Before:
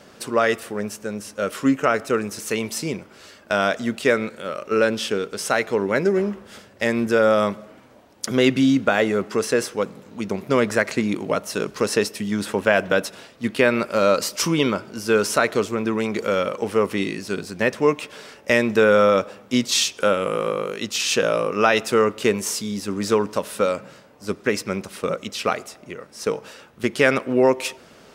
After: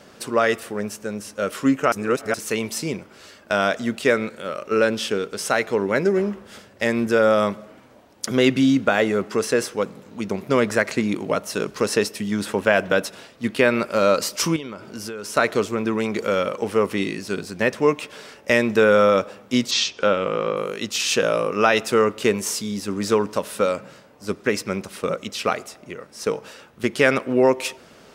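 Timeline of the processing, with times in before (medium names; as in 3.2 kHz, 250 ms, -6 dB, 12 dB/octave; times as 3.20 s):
1.92–2.34 s: reverse
14.56–15.37 s: compression 16:1, threshold -28 dBFS
19.71–20.57 s: low-pass 5.8 kHz 24 dB/octave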